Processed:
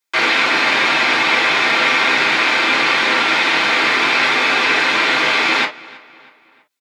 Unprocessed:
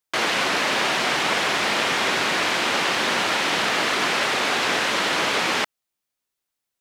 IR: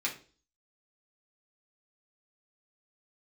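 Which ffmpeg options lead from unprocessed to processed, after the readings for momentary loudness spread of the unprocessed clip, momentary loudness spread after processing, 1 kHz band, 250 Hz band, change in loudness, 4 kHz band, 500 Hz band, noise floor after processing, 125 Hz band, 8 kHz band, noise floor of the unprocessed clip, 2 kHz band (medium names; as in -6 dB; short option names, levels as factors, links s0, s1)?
0 LU, 1 LU, +6.0 dB, +4.5 dB, +7.5 dB, +5.5 dB, +3.0 dB, -52 dBFS, 0.0 dB, -2.0 dB, -83 dBFS, +9.0 dB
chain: -filter_complex "[0:a]acrossover=split=4900[s0][s1];[s1]acompressor=threshold=0.00562:ratio=4:attack=1:release=60[s2];[s0][s2]amix=inputs=2:normalize=0,lowshelf=f=390:g=-4,asplit=2[s3][s4];[s4]adelay=322,lowpass=f=4200:p=1,volume=0.0891,asplit=2[s5][s6];[s6]adelay=322,lowpass=f=4200:p=1,volume=0.48,asplit=2[s7][s8];[s8]adelay=322,lowpass=f=4200:p=1,volume=0.48[s9];[s3][s5][s7][s9]amix=inputs=4:normalize=0[s10];[1:a]atrim=start_sample=2205,atrim=end_sample=3087[s11];[s10][s11]afir=irnorm=-1:irlink=0,volume=1.41"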